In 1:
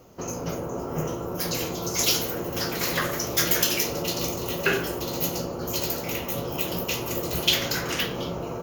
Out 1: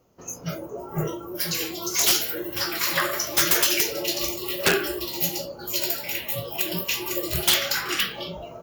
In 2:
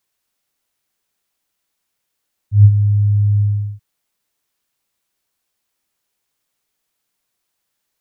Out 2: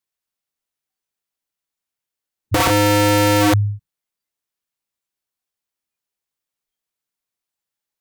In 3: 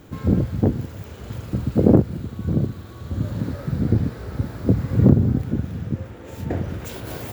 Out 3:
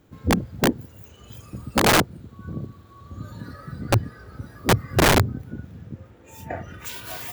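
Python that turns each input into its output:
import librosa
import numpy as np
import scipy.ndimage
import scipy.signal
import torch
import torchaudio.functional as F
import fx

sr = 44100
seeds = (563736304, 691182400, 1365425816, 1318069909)

y = fx.noise_reduce_blind(x, sr, reduce_db=15)
y = (np.mod(10.0 ** (14.0 / 20.0) * y + 1.0, 2.0) - 1.0) / 10.0 ** (14.0 / 20.0)
y = y * librosa.db_to_amplitude(3.5)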